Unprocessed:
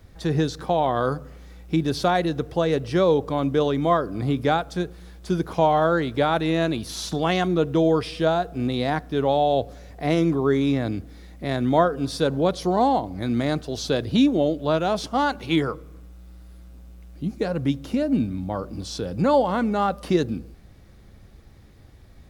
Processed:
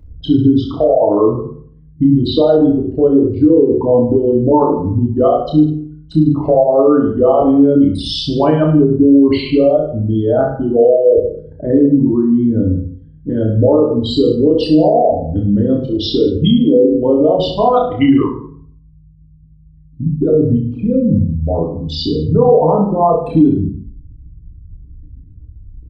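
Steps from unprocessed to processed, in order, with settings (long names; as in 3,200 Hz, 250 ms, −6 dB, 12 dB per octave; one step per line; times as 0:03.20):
spectral envelope exaggerated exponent 3
in parallel at −2.5 dB: downward compressor, threshold −30 dBFS, peak gain reduction 16 dB
on the sum: change of speed 0.861×
on a send: reverse bouncing-ball delay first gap 30 ms, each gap 1.15×, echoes 5
on the sum: feedback delay network reverb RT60 0.55 s, low-frequency decay 1×, high-frequency decay 0.6×, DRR 3 dB
boost into a limiter +6 dB
level −1 dB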